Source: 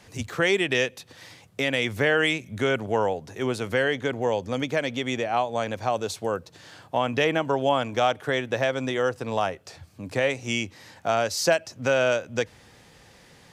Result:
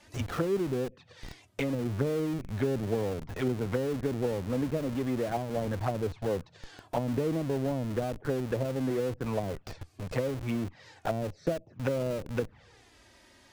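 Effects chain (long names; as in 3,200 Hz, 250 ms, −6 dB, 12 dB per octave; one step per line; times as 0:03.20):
flanger swept by the level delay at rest 3.5 ms, full sweep at −21.5 dBFS
treble cut that deepens with the level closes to 350 Hz, closed at −23 dBFS
0:05.67–0:06.29: parametric band 68 Hz +7 dB 1.3 octaves
in parallel at −5.5 dB: comparator with hysteresis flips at −40.5 dBFS
on the sum: level −2 dB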